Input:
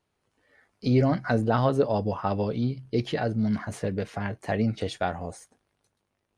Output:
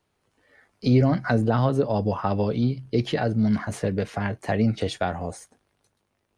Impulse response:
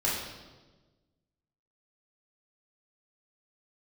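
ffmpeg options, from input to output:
-filter_complex "[0:a]acrossover=split=260[link_01][link_02];[link_02]acompressor=threshold=-25dB:ratio=5[link_03];[link_01][link_03]amix=inputs=2:normalize=0,volume=4dB"

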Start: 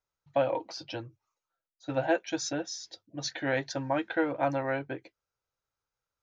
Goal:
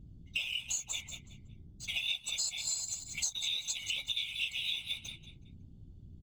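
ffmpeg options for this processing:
ffmpeg -i in.wav -filter_complex "[0:a]afftfilt=real='real(if(lt(b,920),b+92*(1-2*mod(floor(b/92),2)),b),0)':imag='imag(if(lt(b,920),b+92*(1-2*mod(floor(b/92),2)),b),0)':win_size=2048:overlap=0.75,aexciter=amount=10.6:drive=9.2:freq=3000,asplit=2[link_01][link_02];[link_02]aecho=0:1:185|370|555:0.2|0.0678|0.0231[link_03];[link_01][link_03]amix=inputs=2:normalize=0,adynamicsmooth=sensitivity=7.5:basefreq=3000,equalizer=frequency=1700:width=2.3:gain=-10.5,aeval=exprs='val(0)+0.00794*(sin(2*PI*60*n/s)+sin(2*PI*2*60*n/s)/2+sin(2*PI*3*60*n/s)/3+sin(2*PI*4*60*n/s)/4+sin(2*PI*5*60*n/s)/5)':channel_layout=same,afftfilt=real='hypot(re,im)*cos(2*PI*random(0))':imag='hypot(re,im)*sin(2*PI*random(1))':win_size=512:overlap=0.75,adynamicequalizer=threshold=0.00282:dfrequency=930:dqfactor=2.3:tfrequency=930:tqfactor=2.3:attack=5:release=100:ratio=0.375:range=3.5:mode=boostabove:tftype=bell,aecho=1:1:1.4:0.36,acompressor=threshold=-29dB:ratio=6,volume=-4dB" out.wav

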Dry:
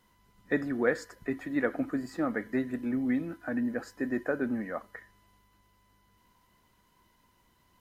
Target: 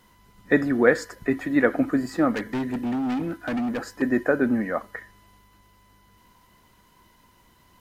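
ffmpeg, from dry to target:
ffmpeg -i in.wav -filter_complex "[0:a]asettb=1/sr,asplit=3[link_01][link_02][link_03];[link_01]atrim=end=2.324[link_04];[link_02]atrim=start=2.32:end=4.02,asetpts=PTS-STARTPTS,afade=type=in:duration=0.004:curve=qsin,afade=type=out:start_time=1.696:duration=0.004:curve=qsin,volume=33dB,asoftclip=hard,volume=-33dB[link_05];[link_03]atrim=start=4.016[link_06];[link_04][link_05]acrossfade=duration=0.004:curve1=hsin:curve2=qsin[link_07];[link_07][link_06]acrossfade=duration=0.004:curve1=qsin:curve2=hsin,volume=9dB" out.wav

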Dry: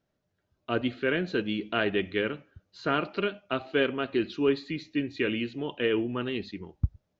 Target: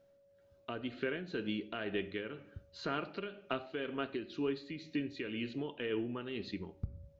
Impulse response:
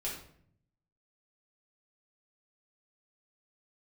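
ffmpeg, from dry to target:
-filter_complex "[0:a]acompressor=threshold=-40dB:ratio=3,asplit=2[link_01][link_02];[1:a]atrim=start_sample=2205[link_03];[link_02][link_03]afir=irnorm=-1:irlink=0,volume=-13.5dB[link_04];[link_01][link_04]amix=inputs=2:normalize=0,tremolo=f=2:d=0.49,aeval=exprs='val(0)+0.000447*sin(2*PI*560*n/s)':channel_layout=same,volume=2.5dB"

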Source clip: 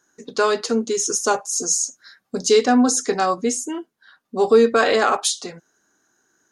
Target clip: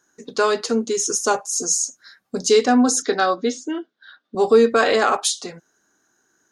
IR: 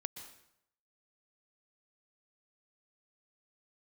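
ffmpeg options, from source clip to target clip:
-filter_complex "[0:a]asettb=1/sr,asplit=3[link_01][link_02][link_03];[link_01]atrim=end=3.024[link_04];[link_02]atrim=start=3.02:end=4.35,asetpts=PTS-STARTPTS,afade=type=in:duration=0.004:curve=qsin,afade=type=out:start_time=1.326:duration=0.004:curve=qsin,highpass=230,equalizer=frequency=290:width_type=q:width=4:gain=5,equalizer=frequency=600:width_type=q:width=4:gain=3,equalizer=frequency=950:width_type=q:width=4:gain=-5,equalizer=frequency=1500:width_type=q:width=4:gain=7,equalizer=frequency=2500:width_type=q:width=4:gain=-3,equalizer=frequency=3600:width_type=q:width=4:gain=10,lowpass=frequency=5200:width=0.5412,lowpass=frequency=5200:width=1.3066[link_05];[link_03]atrim=start=4.346[link_06];[link_04][link_05]acrossfade=duration=0.004:curve1=hsin:curve2=qsin[link_07];[link_07][link_06]acrossfade=duration=0.004:curve1=qsin:curve2=hsin"

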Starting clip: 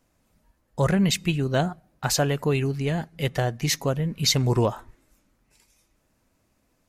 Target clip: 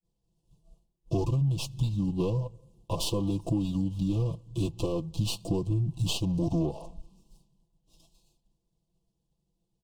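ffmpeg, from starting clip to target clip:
ffmpeg -i in.wav -filter_complex "[0:a]agate=range=-33dB:threshold=-58dB:ratio=3:detection=peak,equalizer=frequency=85:width=0.64:gain=6.5,aecho=1:1:4.2:0.98,asplit=2[link_01][link_02];[link_02]alimiter=limit=-17dB:level=0:latency=1:release=113,volume=-1.5dB[link_03];[link_01][link_03]amix=inputs=2:normalize=0,acompressor=threshold=-19dB:ratio=6,asetrate=30870,aresample=44100,acrossover=split=470[link_04][link_05];[link_05]aeval=exprs='max(val(0),0)':channel_layout=same[link_06];[link_04][link_06]amix=inputs=2:normalize=0,asuperstop=centerf=1700:order=12:qfactor=1.1,volume=-5dB" out.wav

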